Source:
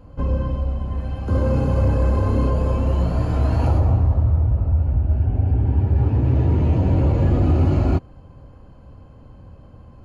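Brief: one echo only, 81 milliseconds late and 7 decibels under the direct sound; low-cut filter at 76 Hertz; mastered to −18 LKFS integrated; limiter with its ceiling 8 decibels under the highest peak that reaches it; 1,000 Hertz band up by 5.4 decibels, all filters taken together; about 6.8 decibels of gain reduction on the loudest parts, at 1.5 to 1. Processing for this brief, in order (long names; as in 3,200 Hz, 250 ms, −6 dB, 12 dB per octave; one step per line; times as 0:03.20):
high-pass filter 76 Hz
parametric band 1,000 Hz +6.5 dB
downward compressor 1.5 to 1, threshold −34 dBFS
brickwall limiter −22.5 dBFS
single-tap delay 81 ms −7 dB
level +13 dB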